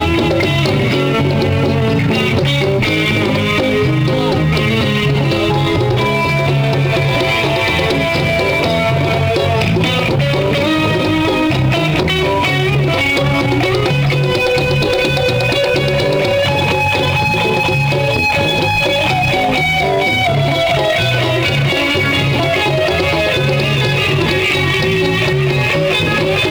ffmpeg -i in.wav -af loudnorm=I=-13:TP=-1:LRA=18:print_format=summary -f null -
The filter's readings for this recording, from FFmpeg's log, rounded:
Input Integrated:    -13.3 LUFS
Input True Peak:      -8.0 dBTP
Input LRA:             0.7 LU
Input Threshold:     -23.3 LUFS